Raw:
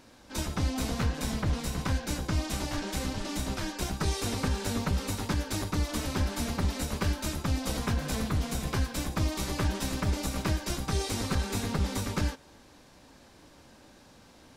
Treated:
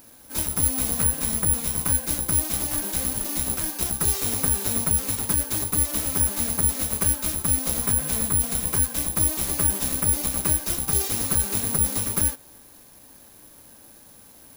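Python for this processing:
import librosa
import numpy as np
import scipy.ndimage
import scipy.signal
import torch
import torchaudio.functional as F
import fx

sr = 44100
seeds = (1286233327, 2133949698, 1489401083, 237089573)

y = (np.kron(x[::4], np.eye(4)[0]) * 4)[:len(x)]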